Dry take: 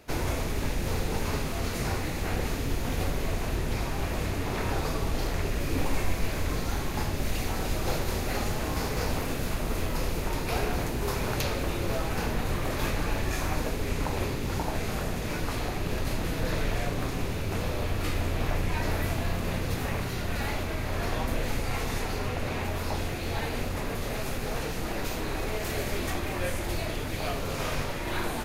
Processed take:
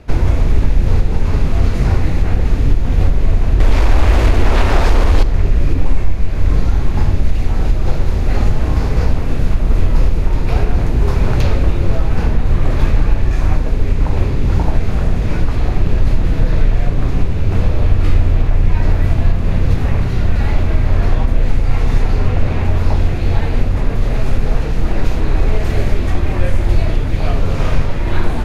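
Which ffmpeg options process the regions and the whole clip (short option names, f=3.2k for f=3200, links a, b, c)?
-filter_complex "[0:a]asettb=1/sr,asplit=3[a][b][c];[a]atrim=end=3.604[d];[b]atrim=start=3.6:end=5.23,asetpts=PTS-STARTPTS,afade=t=in:d=0.004:c=qsin,afade=t=out:st=1.626:d=0.004:c=qsin,aeval=exprs='0.168*sin(PI/2*4.47*val(0)/0.168)':c=same,equalizer=f=150:w=1.5:g=-14[e];[c]atrim=start=5.226[f];[d][e]acrossfade=d=0.004:c1=hsin:c2=qsin[g];[g][f]acrossfade=d=0.004:c1=qsin:c2=hsin,aemphasis=mode=reproduction:type=bsi,alimiter=limit=-9.5dB:level=0:latency=1:release=454,volume=7.5dB"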